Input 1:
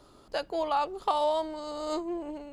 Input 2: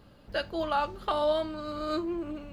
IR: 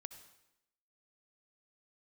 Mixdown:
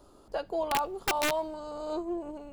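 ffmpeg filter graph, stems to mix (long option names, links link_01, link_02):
-filter_complex "[0:a]acrossover=split=3100[link_01][link_02];[link_02]acompressor=threshold=-54dB:ratio=4:attack=1:release=60[link_03];[link_01][link_03]amix=inputs=2:normalize=0,equalizer=frequency=125:width_type=o:width=1:gain=-9,equalizer=frequency=2000:width_type=o:width=1:gain=-11,equalizer=frequency=4000:width_type=o:width=1:gain=-6,aeval=exprs='(mod(11.9*val(0)+1,2)-1)/11.9':channel_layout=same,volume=0.5dB,asplit=2[link_04][link_05];[link_05]volume=-18dB[link_06];[1:a]lowshelf=frequency=60:gain=11.5,volume=-13.5dB[link_07];[2:a]atrim=start_sample=2205[link_08];[link_06][link_08]afir=irnorm=-1:irlink=0[link_09];[link_04][link_07][link_09]amix=inputs=3:normalize=0"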